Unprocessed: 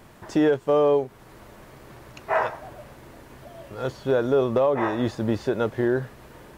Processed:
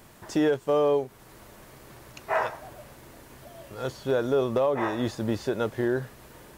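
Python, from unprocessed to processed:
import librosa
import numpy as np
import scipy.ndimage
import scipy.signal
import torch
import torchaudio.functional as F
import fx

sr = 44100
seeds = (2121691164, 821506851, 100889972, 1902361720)

y = fx.high_shelf(x, sr, hz=4300.0, db=9.0)
y = y * 10.0 ** (-3.5 / 20.0)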